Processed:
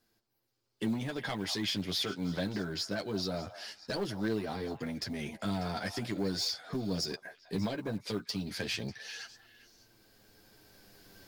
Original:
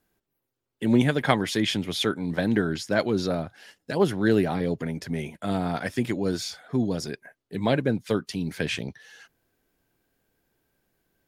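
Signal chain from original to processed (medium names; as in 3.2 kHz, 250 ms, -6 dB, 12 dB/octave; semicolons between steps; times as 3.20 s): recorder AGC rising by 6.2 dB/s; peaking EQ 4.8 kHz +12 dB 0.64 oct; compression 2:1, threshold -32 dBFS, peak gain reduction 10 dB; saturation -23 dBFS, distortion -15 dB; flange 0.21 Hz, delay 8.6 ms, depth 2.3 ms, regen -8%; on a send: repeats whose band climbs or falls 198 ms, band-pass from 900 Hz, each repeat 1.4 oct, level -9 dB; on the sum: short-mantissa float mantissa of 4-bit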